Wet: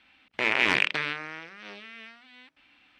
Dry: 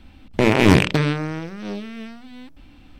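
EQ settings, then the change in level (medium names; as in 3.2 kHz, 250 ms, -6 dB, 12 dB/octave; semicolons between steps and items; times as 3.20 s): band-pass filter 2.2 kHz, Q 1.3; 0.0 dB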